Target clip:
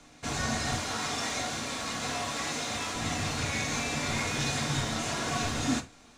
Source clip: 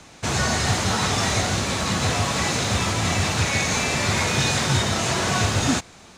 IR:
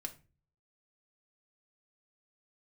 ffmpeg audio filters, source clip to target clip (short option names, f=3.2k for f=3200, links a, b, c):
-filter_complex "[0:a]asettb=1/sr,asplit=3[a][b][c];[a]atrim=end=0.774[d];[b]atrim=start=0.77:end=2.95,asetpts=PTS-STARTPTS,afade=t=in:d=0.004:c=qsin,afade=t=out:st=2.176:d=0.004:c=qsin,lowshelf=f=190:g=-11[e];[c]atrim=start=2.946[f];[d][e]acrossfade=d=0.004:c1=hsin:c2=qsin[g];[g][f]acrossfade=d=0.004:c1=qsin:c2=hsin[h];[1:a]atrim=start_sample=2205,afade=t=out:st=0.14:d=0.01,atrim=end_sample=6615[i];[h][i]afir=irnorm=-1:irlink=0,volume=-6.5dB"